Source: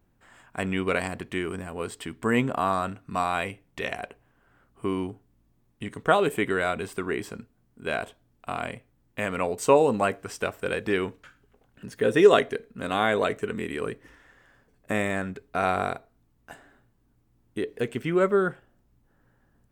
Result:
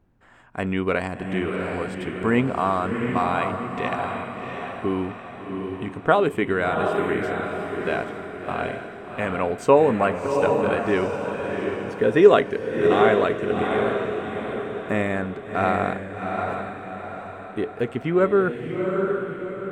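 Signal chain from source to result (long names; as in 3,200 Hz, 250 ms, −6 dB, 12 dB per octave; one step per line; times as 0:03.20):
low-pass filter 2,000 Hz 6 dB per octave
feedback delay with all-pass diffusion 729 ms, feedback 47%, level −4 dB
level +3.5 dB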